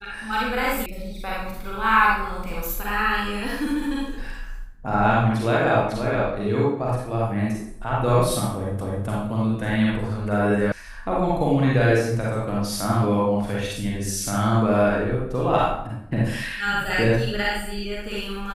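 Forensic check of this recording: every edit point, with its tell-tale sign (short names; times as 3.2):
0.86 sound cut off
8.81 repeat of the last 0.26 s
10.72 sound cut off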